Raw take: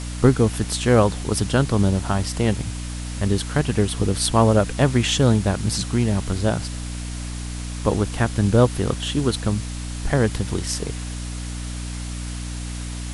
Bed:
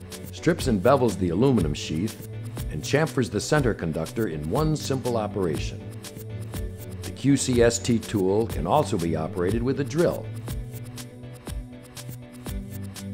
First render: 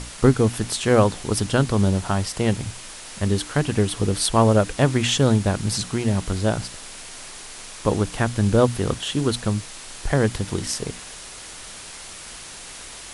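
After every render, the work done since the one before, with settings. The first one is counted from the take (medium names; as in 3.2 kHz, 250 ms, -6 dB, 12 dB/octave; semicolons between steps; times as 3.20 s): hum notches 60/120/180/240/300 Hz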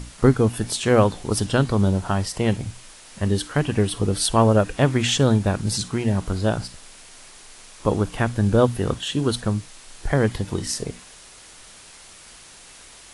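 noise print and reduce 7 dB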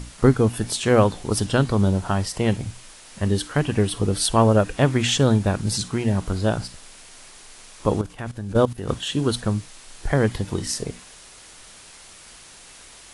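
8.01–8.89 s: level held to a coarse grid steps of 15 dB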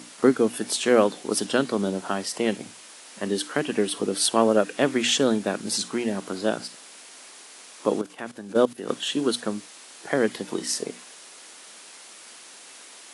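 dynamic bell 920 Hz, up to -5 dB, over -37 dBFS, Q 2; high-pass 230 Hz 24 dB/octave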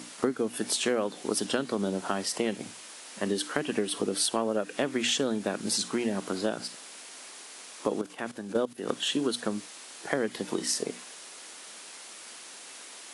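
compression 6:1, threshold -24 dBFS, peak gain reduction 12 dB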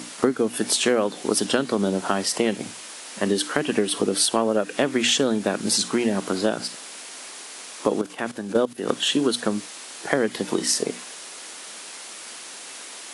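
trim +7 dB; peak limiter -3 dBFS, peak gain reduction 1.5 dB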